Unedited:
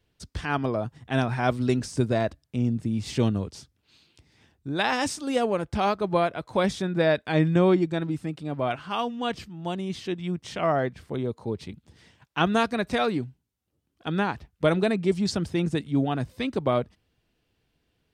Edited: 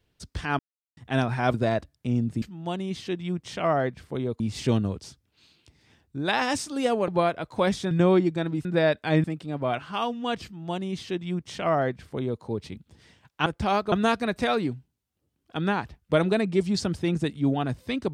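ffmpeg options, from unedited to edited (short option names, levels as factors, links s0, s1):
-filter_complex "[0:a]asplit=12[s0][s1][s2][s3][s4][s5][s6][s7][s8][s9][s10][s11];[s0]atrim=end=0.59,asetpts=PTS-STARTPTS,afade=t=out:st=0.586:d=0.004:c=hsin[s12];[s1]atrim=start=0.59:end=0.97,asetpts=PTS-STARTPTS,volume=0[s13];[s2]atrim=start=0.97:end=1.542,asetpts=PTS-STARTPTS,afade=t=in:d=0.004:c=hsin[s14];[s3]atrim=start=2.028:end=2.912[s15];[s4]atrim=start=9.408:end=11.392[s16];[s5]atrim=start=2.908:end=5.592[s17];[s6]atrim=start=6.048:end=6.882[s18];[s7]atrim=start=7.468:end=8.212[s19];[s8]atrim=start=6.878:end=7.472[s20];[s9]atrim=start=8.208:end=12.432[s21];[s10]atrim=start=5.588:end=6.052[s22];[s11]atrim=start=12.428[s23];[s12][s13][s14]concat=n=3:v=0:a=1[s24];[s24][s15]acrossfade=d=0.004:c1=hsin:c2=hsin[s25];[s25][s16]acrossfade=d=0.004:c1=hsin:c2=hsin[s26];[s26][s17]acrossfade=d=0.004:c1=hsin:c2=hsin[s27];[s27][s18]acrossfade=d=0.004:c1=hsin:c2=hsin[s28];[s28][s19]acrossfade=d=0.004:c1=hsin:c2=hsin[s29];[s29][s20]acrossfade=d=0.004:c1=hsin:c2=hsin[s30];[s30][s21]acrossfade=d=0.004:c1=hsin:c2=hsin[s31];[s31][s22]acrossfade=d=0.004:c1=hsin:c2=hsin[s32];[s32][s23]acrossfade=d=0.004:c1=hsin:c2=hsin"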